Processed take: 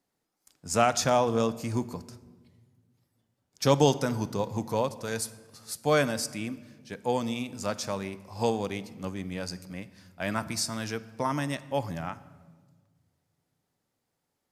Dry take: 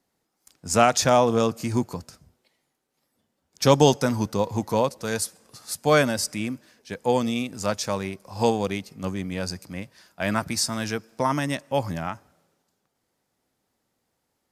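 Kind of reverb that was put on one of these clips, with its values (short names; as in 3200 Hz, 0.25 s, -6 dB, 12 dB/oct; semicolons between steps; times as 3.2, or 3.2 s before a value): shoebox room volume 1300 m³, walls mixed, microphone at 0.34 m; gain -5.5 dB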